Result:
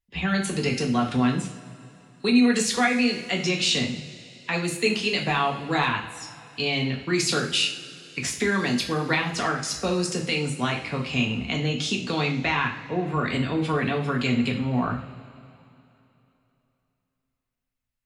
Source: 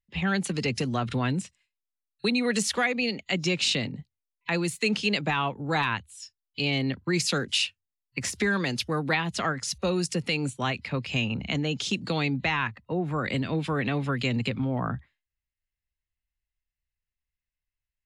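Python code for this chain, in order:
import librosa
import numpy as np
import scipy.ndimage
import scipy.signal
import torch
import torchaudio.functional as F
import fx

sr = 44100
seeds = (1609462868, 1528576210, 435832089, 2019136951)

y = fx.rev_double_slope(x, sr, seeds[0], early_s=0.46, late_s=3.1, knee_db=-19, drr_db=0.0)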